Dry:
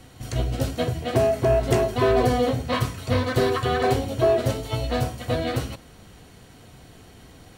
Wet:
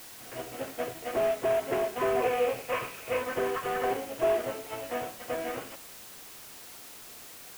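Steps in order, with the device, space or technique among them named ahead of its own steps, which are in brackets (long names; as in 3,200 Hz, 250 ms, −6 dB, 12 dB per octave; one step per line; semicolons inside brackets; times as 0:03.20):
army field radio (band-pass filter 380–3,100 Hz; variable-slope delta modulation 16 kbit/s; white noise bed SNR 15 dB)
0:02.22–0:03.22: thirty-one-band graphic EQ 250 Hz −7 dB, 500 Hz +4 dB, 2,500 Hz +9 dB
level −5 dB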